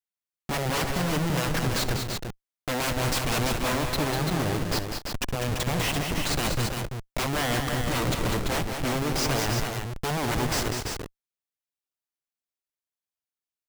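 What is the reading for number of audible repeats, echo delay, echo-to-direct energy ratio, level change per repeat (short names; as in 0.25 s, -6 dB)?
4, 67 ms, -2.5 dB, no steady repeat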